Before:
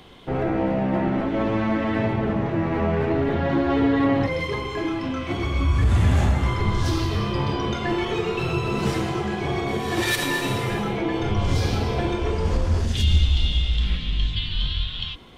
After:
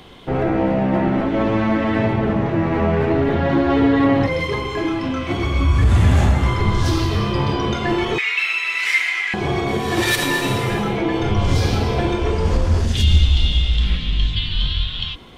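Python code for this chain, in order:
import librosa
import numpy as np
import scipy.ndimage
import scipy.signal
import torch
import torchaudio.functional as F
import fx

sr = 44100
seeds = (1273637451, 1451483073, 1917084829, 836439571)

y = fx.highpass_res(x, sr, hz=2100.0, q=8.9, at=(8.18, 9.34))
y = y * librosa.db_to_amplitude(4.5)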